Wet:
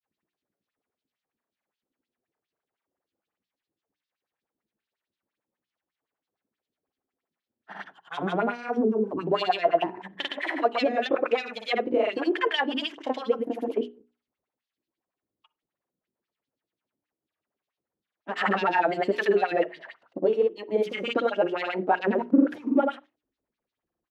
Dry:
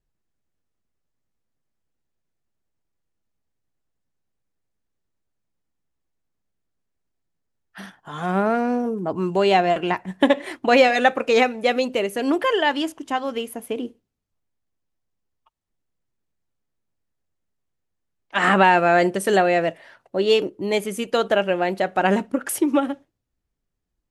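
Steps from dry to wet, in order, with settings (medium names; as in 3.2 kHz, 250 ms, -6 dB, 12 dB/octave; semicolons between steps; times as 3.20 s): median filter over 5 samples; in parallel at +1.5 dB: peak limiter -11.5 dBFS, peak gain reduction 8.5 dB; on the sum: saturation -3.5 dBFS, distortion -21 dB; compression, threshold -16 dBFS, peak gain reduction 8 dB; LFO band-pass sine 5 Hz 270–4100 Hz; granulator 100 ms, grains 20 per s, pitch spread up and down by 0 st; hum notches 60/120/180/240/300/360/420 Hz; on a send at -23 dB: reverberation, pre-delay 36 ms; on the sum: trim +4 dB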